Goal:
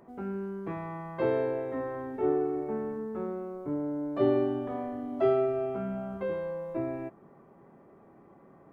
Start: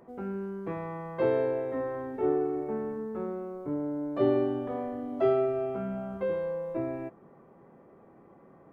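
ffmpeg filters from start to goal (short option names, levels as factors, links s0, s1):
-af "bandreject=f=500:w=12"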